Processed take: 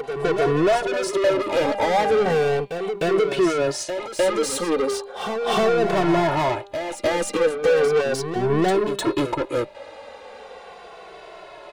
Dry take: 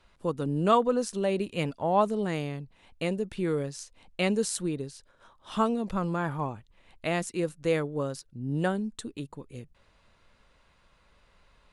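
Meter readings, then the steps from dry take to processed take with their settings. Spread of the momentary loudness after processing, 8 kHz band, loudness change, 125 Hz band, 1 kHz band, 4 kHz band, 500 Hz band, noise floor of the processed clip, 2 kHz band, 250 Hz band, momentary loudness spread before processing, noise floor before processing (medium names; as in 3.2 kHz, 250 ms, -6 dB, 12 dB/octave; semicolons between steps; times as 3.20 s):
22 LU, +7.5 dB, +8.0 dB, +2.5 dB, +7.5 dB, +10.5 dB, +11.0 dB, -42 dBFS, +10.5 dB, +5.0 dB, 16 LU, -65 dBFS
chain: band-stop 970 Hz, Q 17; de-hum 200.2 Hz, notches 22; gate with hold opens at -56 dBFS; high-order bell 530 Hz +13 dB; gain riding within 3 dB 2 s; waveshaping leveller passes 1; compression 6:1, threshold -19 dBFS, peak gain reduction 12.5 dB; overdrive pedal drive 31 dB, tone 4 kHz, clips at -9 dBFS; reverse echo 305 ms -8 dB; endless flanger 2.2 ms -0.37 Hz; trim -1.5 dB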